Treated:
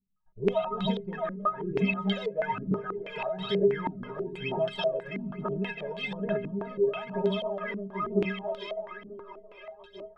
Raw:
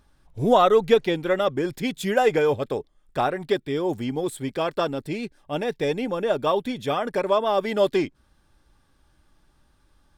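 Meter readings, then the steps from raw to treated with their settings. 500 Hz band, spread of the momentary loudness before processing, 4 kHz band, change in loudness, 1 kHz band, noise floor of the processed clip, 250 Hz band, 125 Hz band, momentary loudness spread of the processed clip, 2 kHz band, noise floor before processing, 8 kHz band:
−7.5 dB, 10 LU, −5.0 dB, −7.0 dB, −9.0 dB, −54 dBFS, −4.5 dB, −2.0 dB, 12 LU, −4.5 dB, −63 dBFS, below −20 dB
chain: delay that plays each chunk backwards 239 ms, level −8 dB
echo with a time of its own for lows and highs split 320 Hz, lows 209 ms, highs 665 ms, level −9.5 dB
phase shifter 1.1 Hz, delay 2.1 ms, feedback 77%
tilt shelving filter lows −5.5 dB, about 680 Hz
downward expander −39 dBFS
downward compressor 4 to 1, threshold −20 dBFS, peak gain reduction 13 dB
parametric band 130 Hz +15 dB 2.1 octaves
stiff-string resonator 190 Hz, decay 0.3 s, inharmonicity 0.03
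low-pass on a step sequencer 6.2 Hz 260–3,700 Hz

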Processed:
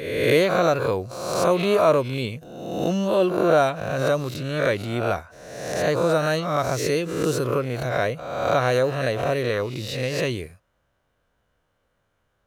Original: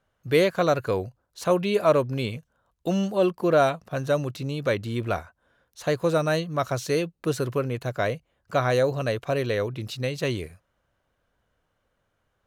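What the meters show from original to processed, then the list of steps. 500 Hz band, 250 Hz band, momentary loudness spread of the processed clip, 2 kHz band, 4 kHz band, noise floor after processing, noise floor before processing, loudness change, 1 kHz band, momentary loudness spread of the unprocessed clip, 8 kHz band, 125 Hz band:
+3.0 dB, +2.0 dB, 10 LU, +4.5 dB, +4.0 dB, −71 dBFS, −75 dBFS, +3.0 dB, +4.0 dB, 10 LU, +5.5 dB, +1.5 dB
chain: peak hold with a rise ahead of every peak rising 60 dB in 0.72 s
background raised ahead of every attack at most 50 dB per second

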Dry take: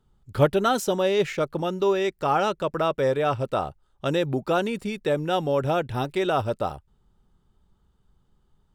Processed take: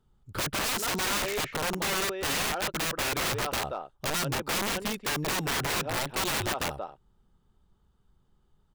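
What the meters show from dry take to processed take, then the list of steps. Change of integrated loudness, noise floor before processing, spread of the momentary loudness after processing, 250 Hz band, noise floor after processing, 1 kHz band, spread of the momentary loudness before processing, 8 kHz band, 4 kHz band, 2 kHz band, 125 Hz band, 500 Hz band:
−4.0 dB, −67 dBFS, 5 LU, −8.0 dB, −68 dBFS, −6.0 dB, 6 LU, +11.0 dB, +4.5 dB, +3.0 dB, −7.0 dB, −12.0 dB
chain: far-end echo of a speakerphone 180 ms, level −7 dB
wrap-around overflow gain 21.5 dB
level −2.5 dB

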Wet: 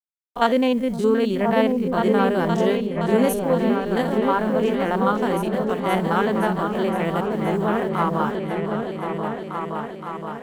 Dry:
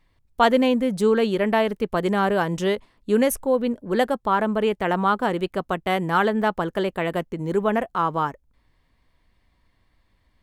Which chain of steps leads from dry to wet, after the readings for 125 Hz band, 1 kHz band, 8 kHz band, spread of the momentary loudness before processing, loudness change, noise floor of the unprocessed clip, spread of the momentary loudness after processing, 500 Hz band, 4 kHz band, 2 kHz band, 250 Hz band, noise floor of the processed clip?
+4.0 dB, +0.5 dB, −2.0 dB, 7 LU, +1.0 dB, −66 dBFS, 8 LU, +1.5 dB, −1.0 dB, −1.0 dB, +3.0 dB, −34 dBFS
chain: spectrum averaged block by block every 50 ms
bit reduction 9 bits
echo whose low-pass opens from repeat to repeat 519 ms, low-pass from 200 Hz, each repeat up 2 octaves, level 0 dB

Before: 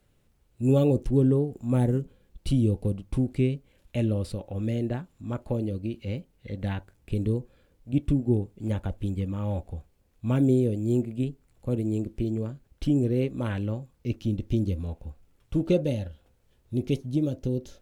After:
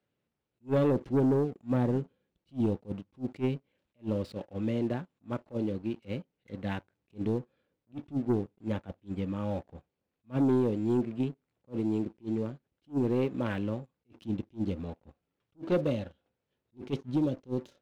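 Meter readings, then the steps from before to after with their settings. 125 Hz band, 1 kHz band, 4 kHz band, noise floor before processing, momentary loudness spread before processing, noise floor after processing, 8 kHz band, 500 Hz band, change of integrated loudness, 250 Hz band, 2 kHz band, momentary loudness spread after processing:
−8.5 dB, +1.5 dB, −5.0 dB, −66 dBFS, 13 LU, −85 dBFS, can't be measured, −2.5 dB, −4.5 dB, −4.0 dB, −1.0 dB, 15 LU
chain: band-pass filter 160–4,100 Hz
leveller curve on the samples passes 2
level that may rise only so fast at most 370 dB per second
level −7 dB

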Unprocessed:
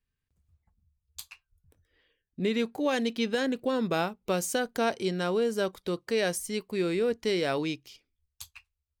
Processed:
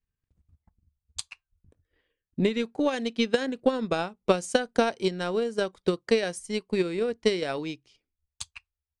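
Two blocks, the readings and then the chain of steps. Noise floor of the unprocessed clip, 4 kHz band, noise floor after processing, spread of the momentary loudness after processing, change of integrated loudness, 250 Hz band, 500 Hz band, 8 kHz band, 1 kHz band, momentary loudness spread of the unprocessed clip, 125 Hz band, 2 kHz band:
−85 dBFS, +1.5 dB, below −85 dBFS, 15 LU, +1.5 dB, +1.5 dB, +2.5 dB, −1.5 dB, +1.0 dB, 17 LU, +1.0 dB, +0.5 dB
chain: transient designer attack +12 dB, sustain −3 dB
downsampling to 22,050 Hz
one half of a high-frequency compander decoder only
level −2.5 dB

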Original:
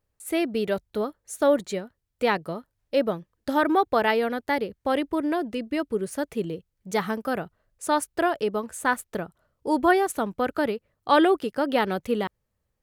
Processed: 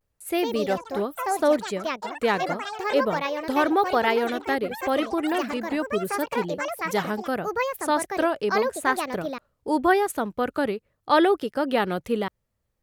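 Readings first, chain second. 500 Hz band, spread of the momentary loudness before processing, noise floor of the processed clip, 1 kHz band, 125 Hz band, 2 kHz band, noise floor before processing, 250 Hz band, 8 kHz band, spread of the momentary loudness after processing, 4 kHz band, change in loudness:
+1.0 dB, 12 LU, −76 dBFS, +1.5 dB, +0.5 dB, +1.5 dB, −78 dBFS, 0.0 dB, +0.5 dB, 8 LU, +2.0 dB, +0.5 dB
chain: delay with pitch and tempo change per echo 190 ms, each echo +5 semitones, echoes 3, each echo −6 dB
pitch vibrato 0.82 Hz 76 cents

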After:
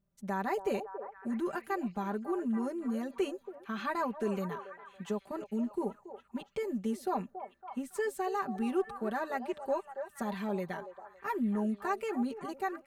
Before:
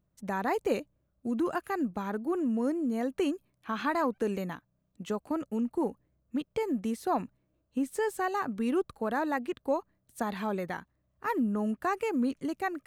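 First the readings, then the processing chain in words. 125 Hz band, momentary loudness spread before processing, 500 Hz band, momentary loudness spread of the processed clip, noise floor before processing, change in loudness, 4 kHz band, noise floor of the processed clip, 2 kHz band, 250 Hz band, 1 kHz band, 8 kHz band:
−1.0 dB, 8 LU, −2.5 dB, 10 LU, −76 dBFS, −3.5 dB, −4.0 dB, −66 dBFS, −4.0 dB, −4.0 dB, −3.0 dB, −3.5 dB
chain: comb filter 5.1 ms, depth 93%
echo through a band-pass that steps 279 ms, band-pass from 610 Hz, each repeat 0.7 octaves, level −7 dB
level −6.5 dB

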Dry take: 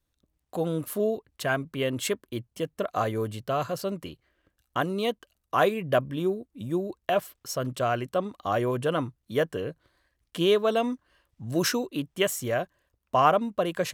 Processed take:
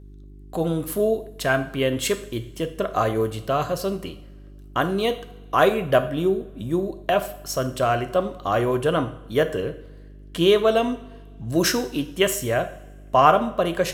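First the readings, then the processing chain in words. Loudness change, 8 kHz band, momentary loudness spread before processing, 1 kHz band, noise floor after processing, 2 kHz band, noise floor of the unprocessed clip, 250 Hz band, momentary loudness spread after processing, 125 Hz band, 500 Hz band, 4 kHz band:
+5.0 dB, +5.0 dB, 11 LU, +5.0 dB, −43 dBFS, +5.0 dB, −79 dBFS, +5.0 dB, 11 LU, +5.0 dB, +5.5 dB, +5.0 dB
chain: hum with harmonics 50 Hz, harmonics 8, −49 dBFS −6 dB per octave
coupled-rooms reverb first 0.53 s, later 1.8 s, from −18 dB, DRR 8 dB
level +4.5 dB

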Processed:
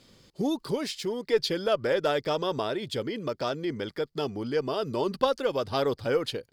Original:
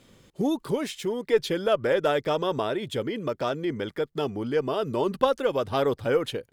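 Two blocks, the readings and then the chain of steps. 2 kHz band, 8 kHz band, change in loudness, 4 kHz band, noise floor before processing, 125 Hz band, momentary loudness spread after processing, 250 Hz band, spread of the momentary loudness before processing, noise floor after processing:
−2.0 dB, can't be measured, −2.0 dB, +1.5 dB, −62 dBFS, −2.5 dB, 6 LU, −2.5 dB, 6 LU, −65 dBFS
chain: parametric band 4,700 Hz +12 dB 0.46 octaves
level −2.5 dB

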